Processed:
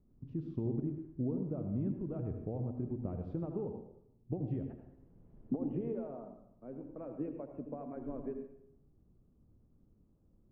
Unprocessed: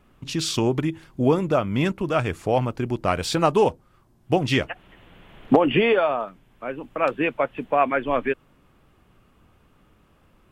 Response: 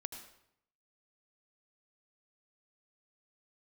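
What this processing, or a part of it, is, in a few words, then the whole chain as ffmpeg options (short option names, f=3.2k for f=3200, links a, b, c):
television next door: -filter_complex "[0:a]acompressor=threshold=-21dB:ratio=5,lowpass=320[a];[1:a]atrim=start_sample=2205[b];[a][b]afir=irnorm=-1:irlink=0,volume=-5.5dB"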